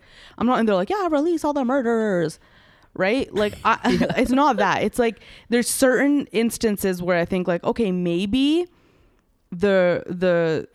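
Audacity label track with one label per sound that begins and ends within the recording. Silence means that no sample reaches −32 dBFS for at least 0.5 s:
2.960000	8.650000	sound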